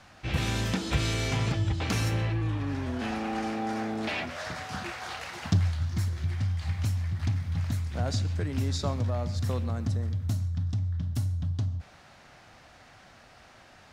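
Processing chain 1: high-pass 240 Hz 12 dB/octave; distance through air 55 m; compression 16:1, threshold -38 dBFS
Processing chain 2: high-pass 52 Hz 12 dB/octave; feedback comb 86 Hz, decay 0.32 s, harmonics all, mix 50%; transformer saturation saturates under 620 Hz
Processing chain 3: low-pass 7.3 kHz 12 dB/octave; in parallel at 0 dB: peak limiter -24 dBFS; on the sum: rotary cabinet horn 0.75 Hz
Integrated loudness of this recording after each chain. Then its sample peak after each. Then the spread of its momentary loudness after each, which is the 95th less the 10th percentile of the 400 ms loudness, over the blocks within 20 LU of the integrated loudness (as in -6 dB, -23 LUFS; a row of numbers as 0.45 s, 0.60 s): -43.0 LUFS, -37.0 LUFS, -27.0 LUFS; -25.0 dBFS, -17.5 dBFS, -12.0 dBFS; 13 LU, 5 LU, 7 LU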